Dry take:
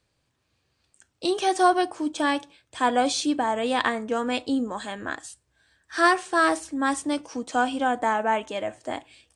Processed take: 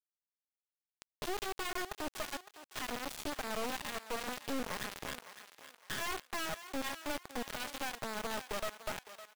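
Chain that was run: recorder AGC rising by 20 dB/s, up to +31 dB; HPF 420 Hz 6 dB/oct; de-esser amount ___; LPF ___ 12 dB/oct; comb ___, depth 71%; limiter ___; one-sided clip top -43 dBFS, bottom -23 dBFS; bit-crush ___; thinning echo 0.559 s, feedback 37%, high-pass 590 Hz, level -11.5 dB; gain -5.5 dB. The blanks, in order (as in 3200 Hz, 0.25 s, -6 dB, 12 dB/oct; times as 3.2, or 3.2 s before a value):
20%, 2300 Hz, 4.8 ms, -20 dBFS, 5-bit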